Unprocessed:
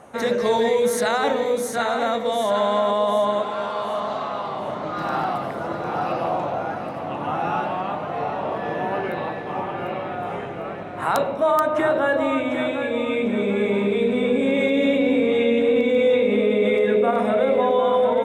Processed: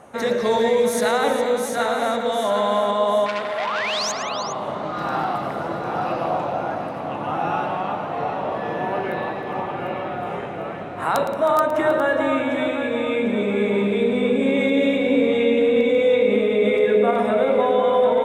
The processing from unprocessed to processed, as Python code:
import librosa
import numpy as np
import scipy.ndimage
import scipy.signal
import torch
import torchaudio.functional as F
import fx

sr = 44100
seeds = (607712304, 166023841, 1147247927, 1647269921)

y = fx.spec_paint(x, sr, seeds[0], shape='rise', start_s=3.56, length_s=0.56, low_hz=590.0, high_hz=7000.0, level_db=-24.0)
y = fx.echo_multitap(y, sr, ms=(113, 174, 314, 409), db=(-12.0, -18.0, -15.0, -11.5))
y = fx.transformer_sat(y, sr, knee_hz=2100.0, at=(3.26, 4.23))